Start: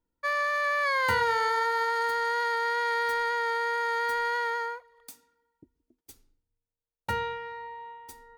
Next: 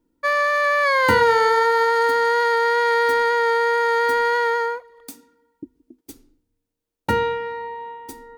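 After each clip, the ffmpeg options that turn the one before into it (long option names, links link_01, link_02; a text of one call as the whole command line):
ffmpeg -i in.wav -af "equalizer=frequency=290:width=1.2:gain=14.5,volume=7dB" out.wav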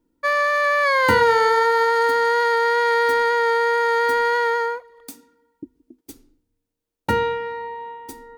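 ffmpeg -i in.wav -af anull out.wav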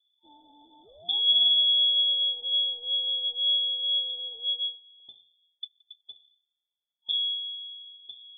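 ffmpeg -i in.wav -af "afftfilt=real='re*(1-between(b*sr/4096,470,2900))':imag='im*(1-between(b*sr/4096,470,2900))':win_size=4096:overlap=0.75,highpass=frequency=370:width_type=q:width=3.5,lowpass=frequency=3200:width_type=q:width=0.5098,lowpass=frequency=3200:width_type=q:width=0.6013,lowpass=frequency=3200:width_type=q:width=0.9,lowpass=frequency=3200:width_type=q:width=2.563,afreqshift=-3800,volume=-8dB" out.wav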